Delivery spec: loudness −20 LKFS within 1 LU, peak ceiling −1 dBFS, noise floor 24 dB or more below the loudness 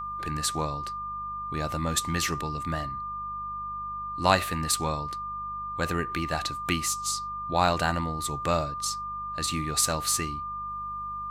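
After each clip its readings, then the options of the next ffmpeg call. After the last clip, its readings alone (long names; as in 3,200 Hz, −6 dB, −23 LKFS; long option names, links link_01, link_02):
mains hum 50 Hz; hum harmonics up to 200 Hz; level of the hum −46 dBFS; interfering tone 1,200 Hz; level of the tone −32 dBFS; integrated loudness −29.0 LKFS; sample peak −6.0 dBFS; target loudness −20.0 LKFS
→ -af "bandreject=frequency=50:width_type=h:width=4,bandreject=frequency=100:width_type=h:width=4,bandreject=frequency=150:width_type=h:width=4,bandreject=frequency=200:width_type=h:width=4"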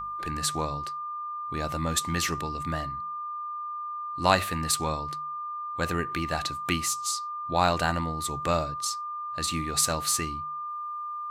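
mains hum none found; interfering tone 1,200 Hz; level of the tone −32 dBFS
→ -af "bandreject=frequency=1200:width=30"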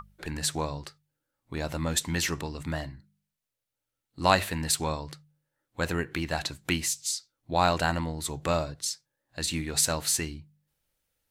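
interfering tone none found; integrated loudness −29.0 LKFS; sample peak −6.0 dBFS; target loudness −20.0 LKFS
→ -af "volume=9dB,alimiter=limit=-1dB:level=0:latency=1"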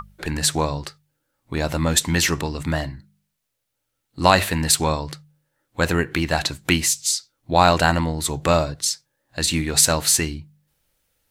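integrated loudness −20.5 LKFS; sample peak −1.0 dBFS; background noise floor −77 dBFS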